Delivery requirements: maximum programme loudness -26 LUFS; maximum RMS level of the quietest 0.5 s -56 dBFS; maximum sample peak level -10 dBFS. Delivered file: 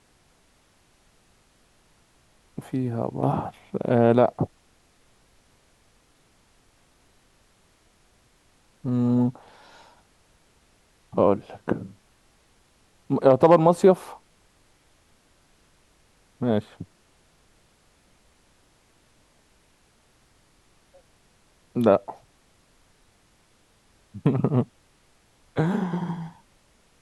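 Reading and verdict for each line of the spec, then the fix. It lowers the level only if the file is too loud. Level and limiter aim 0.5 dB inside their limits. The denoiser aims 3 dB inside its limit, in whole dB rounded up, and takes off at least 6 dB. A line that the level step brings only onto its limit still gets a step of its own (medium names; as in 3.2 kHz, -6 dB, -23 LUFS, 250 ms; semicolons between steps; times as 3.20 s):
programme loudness -23.5 LUFS: fail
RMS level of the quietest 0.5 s -62 dBFS: pass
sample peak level -4.0 dBFS: fail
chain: trim -3 dB; peak limiter -10.5 dBFS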